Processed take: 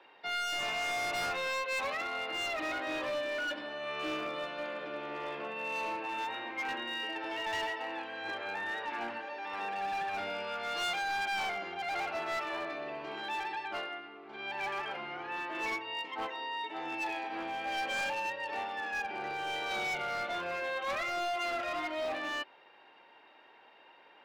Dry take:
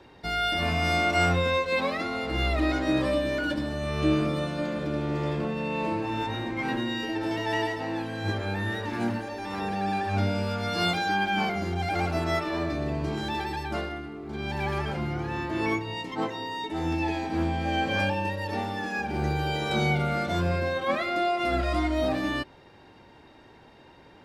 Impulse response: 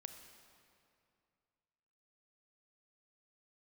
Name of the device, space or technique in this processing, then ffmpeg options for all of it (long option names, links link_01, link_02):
megaphone: -filter_complex "[0:a]asettb=1/sr,asplit=3[link_01][link_02][link_03];[link_01]atrim=end=8.554[link_04];[link_02]atrim=start=8.55:end=9.04,asetpts=PTS-STARTPTS,afade=type=in:duration=0.004:curve=qsin,afade=type=out:start_time=0.486:duration=0.004:curve=qsin,equalizer=frequency=830:width_type=o:width=0.35:gain=4[link_05];[link_03]atrim=start=9.036[link_06];[link_04][link_05]acrossfade=duration=0.004:curve1=hsin:curve2=qsin[link_07];[link_07][link_06]acrossfade=duration=0.004:curve1=qsin:curve2=hsin,highpass=650,lowpass=2900,equalizer=frequency=2800:width_type=o:width=0.44:gain=6,asoftclip=type=hard:threshold=-28.5dB,volume=-2.5dB"